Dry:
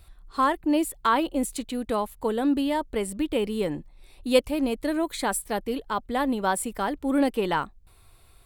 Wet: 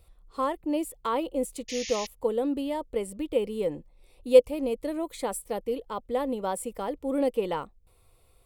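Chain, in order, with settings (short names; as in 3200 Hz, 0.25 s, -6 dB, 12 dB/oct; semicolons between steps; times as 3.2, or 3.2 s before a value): painted sound noise, 1.68–2.07, 1700–7000 Hz -30 dBFS; thirty-one-band EQ 500 Hz +12 dB, 1600 Hz -10 dB, 4000 Hz -4 dB; gain -6.5 dB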